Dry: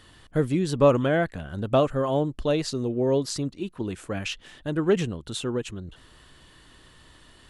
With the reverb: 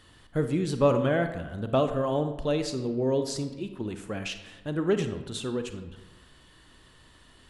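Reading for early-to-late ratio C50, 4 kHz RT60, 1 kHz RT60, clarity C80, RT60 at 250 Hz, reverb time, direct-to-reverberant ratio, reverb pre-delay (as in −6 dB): 9.5 dB, 0.65 s, 1.1 s, 11.5 dB, 1.1 s, 1.1 s, 8.0 dB, 32 ms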